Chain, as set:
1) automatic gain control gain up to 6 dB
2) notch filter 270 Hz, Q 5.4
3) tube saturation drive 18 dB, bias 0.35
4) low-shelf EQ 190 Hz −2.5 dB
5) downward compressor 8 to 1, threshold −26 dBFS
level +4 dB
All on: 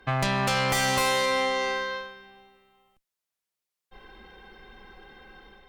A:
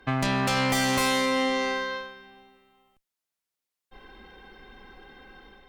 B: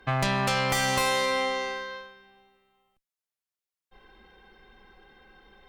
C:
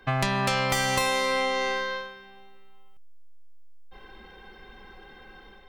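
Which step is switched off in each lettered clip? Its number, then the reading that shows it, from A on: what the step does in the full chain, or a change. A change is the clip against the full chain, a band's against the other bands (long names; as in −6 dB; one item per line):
2, 250 Hz band +7.0 dB
1, change in momentary loudness spread +2 LU
3, change in crest factor +4.5 dB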